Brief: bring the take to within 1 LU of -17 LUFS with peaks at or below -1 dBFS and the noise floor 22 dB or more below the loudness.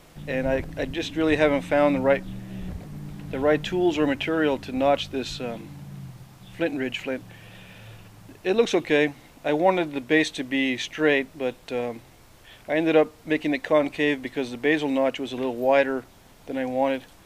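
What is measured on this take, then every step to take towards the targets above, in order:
loudness -24.5 LUFS; peak -6.0 dBFS; loudness target -17.0 LUFS
-> gain +7.5 dB; limiter -1 dBFS

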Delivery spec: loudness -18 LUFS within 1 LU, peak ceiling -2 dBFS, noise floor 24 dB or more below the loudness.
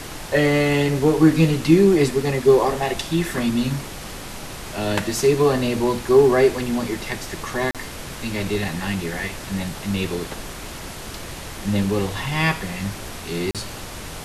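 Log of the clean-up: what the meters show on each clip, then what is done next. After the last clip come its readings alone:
dropouts 2; longest dropout 37 ms; noise floor -35 dBFS; noise floor target -45 dBFS; loudness -20.5 LUFS; peak -3.0 dBFS; loudness target -18.0 LUFS
-> interpolate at 7.71/13.51, 37 ms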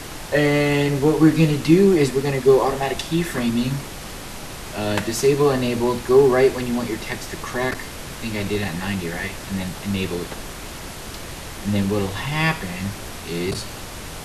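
dropouts 0; noise floor -35 dBFS; noise floor target -45 dBFS
-> noise print and reduce 10 dB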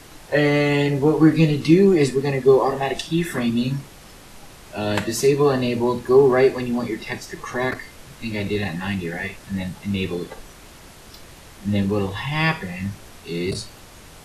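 noise floor -44 dBFS; noise floor target -45 dBFS
-> noise print and reduce 6 dB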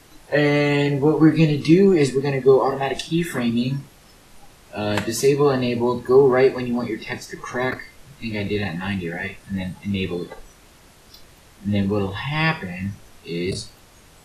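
noise floor -50 dBFS; loudness -20.5 LUFS; peak -3.0 dBFS; loudness target -18.0 LUFS
-> gain +2.5 dB; limiter -2 dBFS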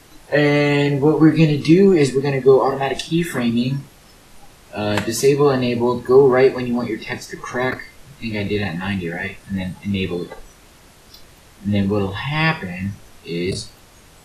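loudness -18.5 LUFS; peak -2.0 dBFS; noise floor -48 dBFS

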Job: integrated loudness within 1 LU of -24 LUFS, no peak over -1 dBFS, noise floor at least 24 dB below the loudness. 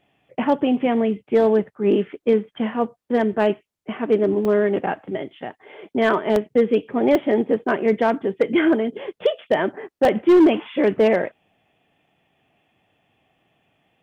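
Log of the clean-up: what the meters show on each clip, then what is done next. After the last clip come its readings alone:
clipped 1.1%; flat tops at -9.0 dBFS; dropouts 4; longest dropout 1.6 ms; loudness -20.5 LUFS; peak -9.0 dBFS; loudness target -24.0 LUFS
-> clip repair -9 dBFS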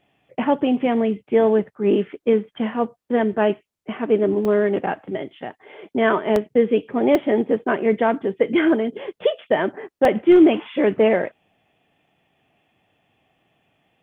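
clipped 0.0%; dropouts 4; longest dropout 1.6 ms
-> interpolate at 4.45/6.36/7.15/10.05, 1.6 ms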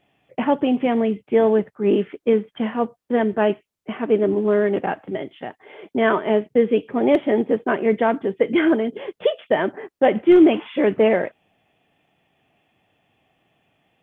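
dropouts 0; loudness -20.0 LUFS; peak -5.0 dBFS; loudness target -24.0 LUFS
-> gain -4 dB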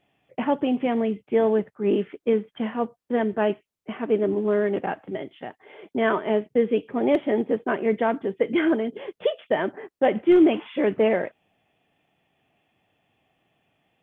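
loudness -24.0 LUFS; peak -9.0 dBFS; noise floor -76 dBFS

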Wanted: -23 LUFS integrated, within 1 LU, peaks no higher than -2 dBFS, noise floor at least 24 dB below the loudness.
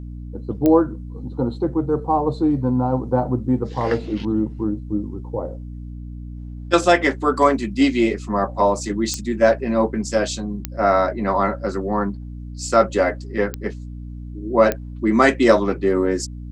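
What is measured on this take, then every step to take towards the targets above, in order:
clicks 5; hum 60 Hz; harmonics up to 300 Hz; hum level -30 dBFS; loudness -20.0 LUFS; peak -1.0 dBFS; loudness target -23.0 LUFS
-> de-click; notches 60/120/180/240/300 Hz; gain -3 dB

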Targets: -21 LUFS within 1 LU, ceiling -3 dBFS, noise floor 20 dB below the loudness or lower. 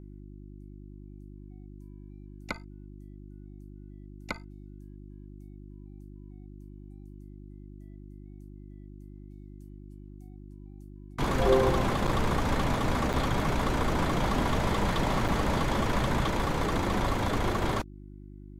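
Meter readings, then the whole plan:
dropouts 3; longest dropout 6.3 ms; hum 50 Hz; harmonics up to 350 Hz; hum level -43 dBFS; loudness -28.5 LUFS; peak -11.0 dBFS; loudness target -21.0 LUFS
-> interpolate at 12.07/13.13/15.28, 6.3 ms; de-hum 50 Hz, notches 7; gain +7.5 dB

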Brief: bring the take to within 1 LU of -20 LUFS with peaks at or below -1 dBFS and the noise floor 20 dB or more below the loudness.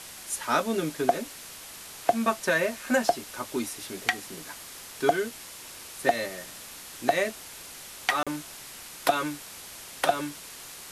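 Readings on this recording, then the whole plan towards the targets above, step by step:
dropouts 1; longest dropout 36 ms; noise floor -44 dBFS; noise floor target -49 dBFS; loudness -28.5 LUFS; peak -7.0 dBFS; loudness target -20.0 LUFS
-> interpolate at 8.23, 36 ms; noise print and reduce 6 dB; gain +8.5 dB; limiter -1 dBFS

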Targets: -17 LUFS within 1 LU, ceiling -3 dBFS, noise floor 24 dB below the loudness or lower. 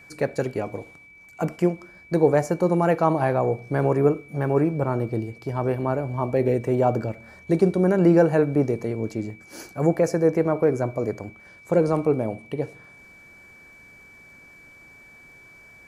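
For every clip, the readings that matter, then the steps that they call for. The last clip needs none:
ticks 33/s; steady tone 2300 Hz; tone level -47 dBFS; loudness -23.0 LUFS; peak -5.5 dBFS; loudness target -17.0 LUFS
-> de-click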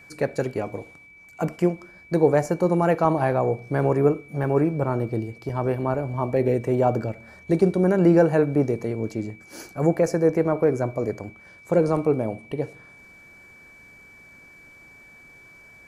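ticks 0/s; steady tone 2300 Hz; tone level -47 dBFS
-> notch 2300 Hz, Q 30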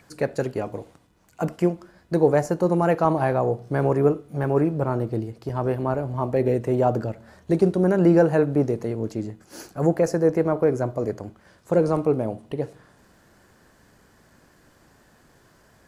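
steady tone none; loudness -23.0 LUFS; peak -5.5 dBFS; loudness target -17.0 LUFS
-> gain +6 dB; limiter -3 dBFS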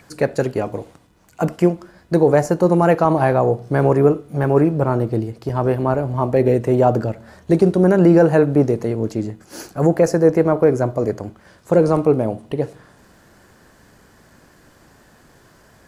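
loudness -17.5 LUFS; peak -3.0 dBFS; noise floor -52 dBFS

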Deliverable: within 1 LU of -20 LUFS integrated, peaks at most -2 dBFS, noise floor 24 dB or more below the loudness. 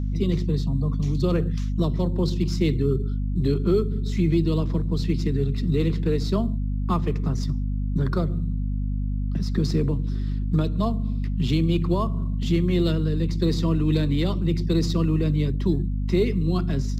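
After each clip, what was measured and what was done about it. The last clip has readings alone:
hum 50 Hz; harmonics up to 250 Hz; hum level -23 dBFS; loudness -24.5 LUFS; peak -9.5 dBFS; loudness target -20.0 LUFS
-> de-hum 50 Hz, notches 5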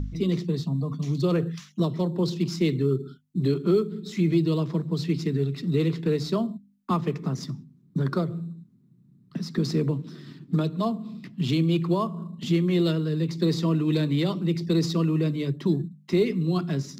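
hum none; loudness -26.0 LUFS; peak -12.0 dBFS; loudness target -20.0 LUFS
-> gain +6 dB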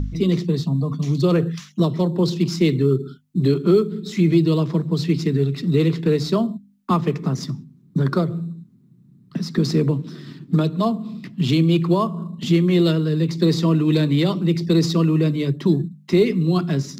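loudness -20.0 LUFS; peak -6.0 dBFS; noise floor -52 dBFS

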